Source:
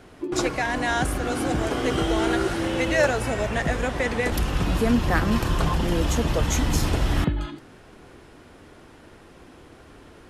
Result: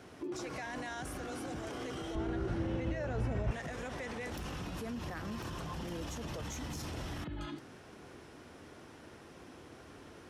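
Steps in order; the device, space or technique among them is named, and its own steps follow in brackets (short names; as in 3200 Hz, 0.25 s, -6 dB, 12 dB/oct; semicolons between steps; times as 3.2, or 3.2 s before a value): broadcast voice chain (HPF 74 Hz 12 dB/oct; de-esser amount 50%; compressor 4:1, threshold -26 dBFS, peak gain reduction 9 dB; bell 5700 Hz +5.5 dB 0.24 oct; limiter -28.5 dBFS, peak gain reduction 11.5 dB); 2.15–3.51 RIAA curve playback; gain -4.5 dB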